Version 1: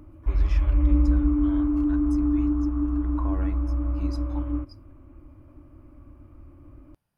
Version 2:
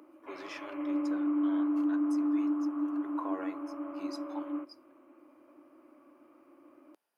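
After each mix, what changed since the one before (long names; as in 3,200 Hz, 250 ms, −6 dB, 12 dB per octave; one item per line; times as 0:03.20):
master: add high-pass filter 330 Hz 24 dB per octave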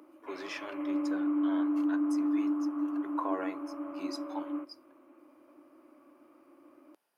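speech +4.5 dB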